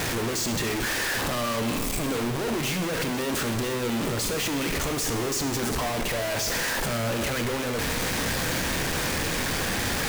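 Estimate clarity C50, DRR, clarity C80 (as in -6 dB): 8.5 dB, 6.0 dB, 9.5 dB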